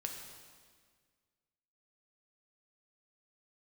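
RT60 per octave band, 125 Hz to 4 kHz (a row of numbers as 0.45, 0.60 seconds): 2.0, 2.0, 1.8, 1.7, 1.6, 1.6 seconds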